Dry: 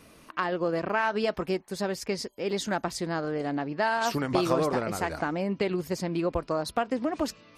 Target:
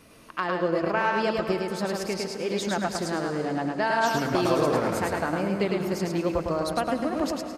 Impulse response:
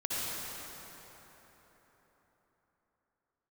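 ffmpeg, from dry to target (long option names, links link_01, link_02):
-filter_complex "[0:a]aecho=1:1:106|212|318|424:0.708|0.205|0.0595|0.0173,asplit=2[link_01][link_02];[1:a]atrim=start_sample=2205,adelay=115[link_03];[link_02][link_03]afir=irnorm=-1:irlink=0,volume=-16.5dB[link_04];[link_01][link_04]amix=inputs=2:normalize=0"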